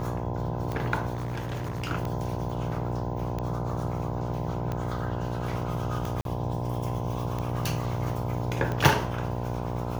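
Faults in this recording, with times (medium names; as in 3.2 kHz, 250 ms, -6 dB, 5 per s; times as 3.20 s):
buzz 60 Hz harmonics 17 -33 dBFS
tick 45 rpm -19 dBFS
1.14–1.92 s: clipped -28.5 dBFS
6.21–6.25 s: dropout 42 ms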